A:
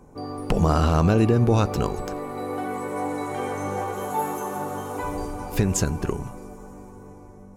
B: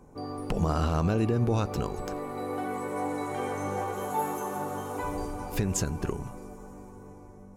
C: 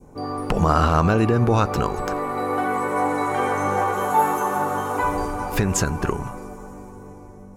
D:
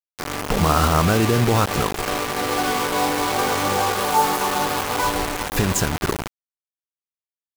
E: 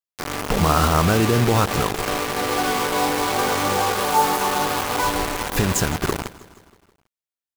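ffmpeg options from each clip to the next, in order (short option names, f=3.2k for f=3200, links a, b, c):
-af "alimiter=limit=-12.5dB:level=0:latency=1:release=248,volume=-3.5dB"
-af "adynamicequalizer=threshold=0.00447:dfrequency=1300:dqfactor=0.82:tfrequency=1300:tqfactor=0.82:attack=5:release=100:ratio=0.375:range=4:mode=boostabove:tftype=bell,volume=6.5dB"
-af "acrusher=bits=3:mix=0:aa=0.000001"
-af "aecho=1:1:159|318|477|636|795:0.112|0.0662|0.0391|0.023|0.0136"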